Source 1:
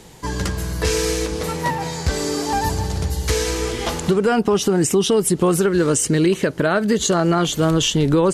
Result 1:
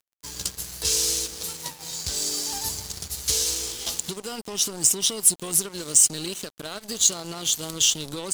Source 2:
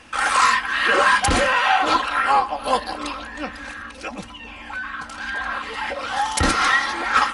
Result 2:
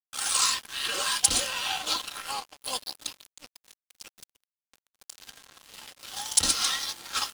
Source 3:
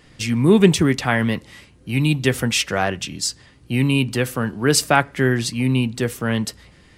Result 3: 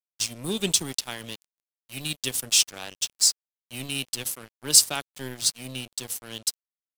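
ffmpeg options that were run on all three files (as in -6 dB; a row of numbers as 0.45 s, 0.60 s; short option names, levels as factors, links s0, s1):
-af "aexciter=amount=6.8:drive=7:freq=2900,aeval=exprs='sgn(val(0))*max(abs(val(0))-0.106,0)':c=same,volume=0.2"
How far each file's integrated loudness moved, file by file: -3.5 LU, -7.0 LU, -5.0 LU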